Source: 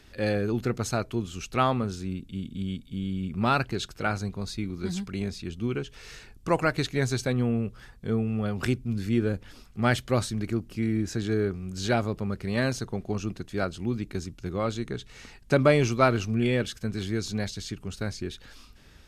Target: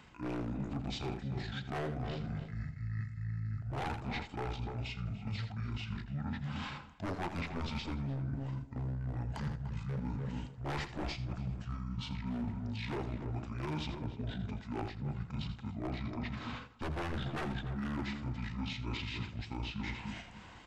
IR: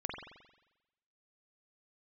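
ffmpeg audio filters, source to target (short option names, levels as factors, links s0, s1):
-filter_complex "[0:a]flanger=delay=18.5:depth=3:speed=0.48,volume=6.31,asoftclip=hard,volume=0.158,atempo=1.6,highpass=120,aeval=exprs='0.0631*(abs(mod(val(0)/0.0631+3,4)-2)-1)':c=same,asplit=2[s0][s1];[s1]adelay=48,volume=0.251[s2];[s0][s2]amix=inputs=2:normalize=0,asplit=2[s3][s4];[s4]adelay=170,lowpass=f=2400:p=1,volume=0.335,asplit=2[s5][s6];[s6]adelay=170,lowpass=f=2400:p=1,volume=0.17[s7];[s3][s5][s7]amix=inputs=3:normalize=0,asplit=2[s8][s9];[1:a]atrim=start_sample=2205,adelay=90[s10];[s9][s10]afir=irnorm=-1:irlink=0,volume=0.075[s11];[s8][s11]amix=inputs=2:normalize=0,asetrate=25442,aresample=44100,areverse,acompressor=threshold=0.00708:ratio=6,areverse,volume=2.24"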